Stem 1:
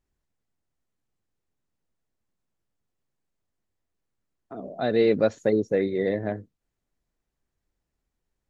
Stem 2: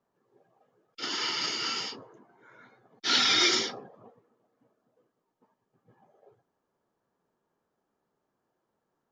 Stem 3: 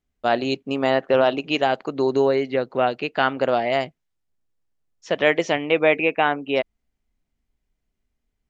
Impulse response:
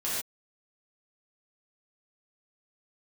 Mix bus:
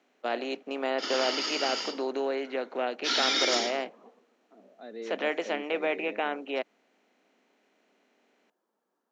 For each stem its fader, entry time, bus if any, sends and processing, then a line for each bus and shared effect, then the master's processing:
-19.0 dB, 0.00 s, no send, dry
-1.5 dB, 0.00 s, send -19.5 dB, limiter -16.5 dBFS, peak gain reduction 7 dB
-13.5 dB, 0.00 s, no send, per-bin compression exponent 0.6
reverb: on, pre-delay 3 ms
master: steep high-pass 200 Hz 48 dB/oct

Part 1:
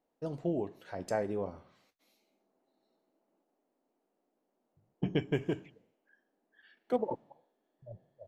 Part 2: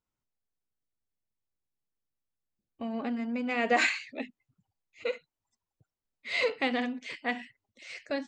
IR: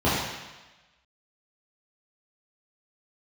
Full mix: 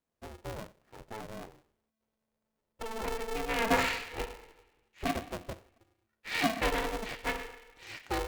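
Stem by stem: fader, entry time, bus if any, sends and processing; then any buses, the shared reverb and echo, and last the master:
-7.5 dB, 0.00 s, no send, median filter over 41 samples; notch 540 Hz, Q 12
-2.5 dB, 0.00 s, send -24 dB, de-esser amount 85%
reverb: on, RT60 1.1 s, pre-delay 3 ms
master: polarity switched at an audio rate 220 Hz

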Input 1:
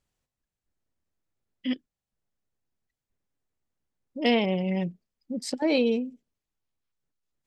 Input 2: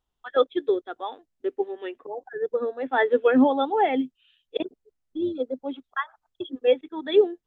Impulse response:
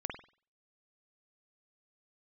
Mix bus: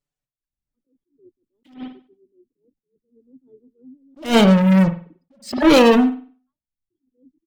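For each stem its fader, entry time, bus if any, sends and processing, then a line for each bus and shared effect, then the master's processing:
+2.0 dB, 0.00 s, send -3 dB, envelope flanger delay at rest 6.9 ms, full sweep at -22 dBFS; sample leveller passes 5; reverb removal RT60 1 s
-4.0 dB, 0.50 s, no send, inverse Chebyshev low-pass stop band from 690 Hz, stop band 50 dB; compressor 6:1, threshold -35 dBFS, peak gain reduction 17 dB; auto duck -7 dB, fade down 0.45 s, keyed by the first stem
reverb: on, pre-delay 47 ms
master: attack slew limiter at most 190 dB/s

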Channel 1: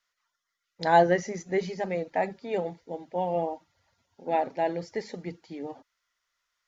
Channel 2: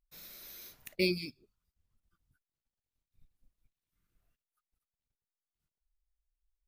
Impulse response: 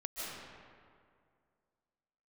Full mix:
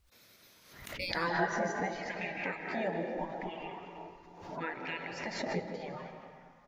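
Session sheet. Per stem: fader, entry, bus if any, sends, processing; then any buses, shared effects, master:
-0.5 dB, 0.30 s, send -3.5 dB, compressor 4:1, threshold -34 dBFS, peak gain reduction 16.5 dB; LFO bell 0.76 Hz 370–2600 Hz +17 dB
-4.5 dB, 0.00 s, send -17 dB, low shelf 110 Hz +12 dB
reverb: on, RT60 2.2 s, pre-delay 0.11 s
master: spectral gate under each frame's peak -10 dB weak; high shelf 7800 Hz -10 dB; backwards sustainer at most 64 dB/s

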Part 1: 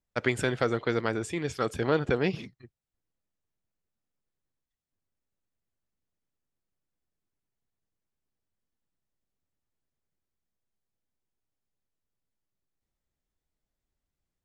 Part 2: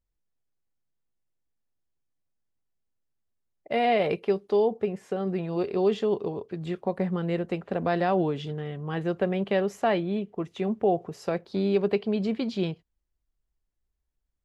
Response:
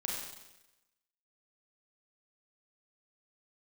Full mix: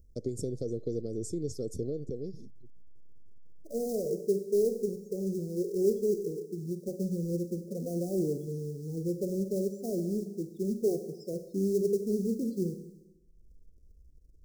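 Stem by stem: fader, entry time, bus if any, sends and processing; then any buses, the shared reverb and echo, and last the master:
+2.0 dB, 0.00 s, no send, compressor 3:1, threshold -31 dBFS, peak gain reduction 9.5 dB; auto duck -21 dB, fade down 1.90 s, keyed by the second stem
-6.0 dB, 0.00 s, send -6 dB, upward compressor, threshold -31 dBFS; loudest bins only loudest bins 8; short-mantissa float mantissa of 2-bit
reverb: on, RT60 1.0 s, pre-delay 31 ms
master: elliptic band-stop 470–5500 Hz, stop band 40 dB

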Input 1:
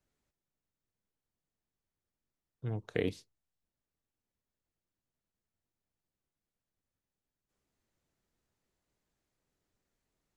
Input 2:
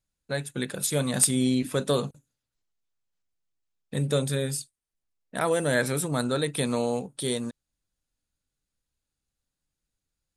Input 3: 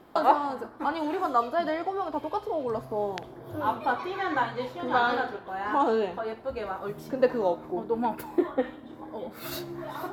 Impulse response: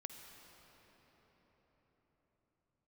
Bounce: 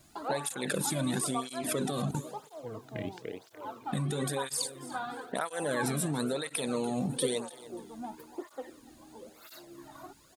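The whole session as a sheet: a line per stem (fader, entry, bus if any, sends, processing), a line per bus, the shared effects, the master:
-3.0 dB, 0.00 s, no send, echo send -4 dB, dry
-12.0 dB, 0.00 s, no send, echo send -17 dB, fast leveller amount 100%
-10.5 dB, 0.00 s, no send, echo send -17.5 dB, dry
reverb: off
echo: feedback echo 0.292 s, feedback 30%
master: tape flanging out of phase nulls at 1 Hz, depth 2.4 ms

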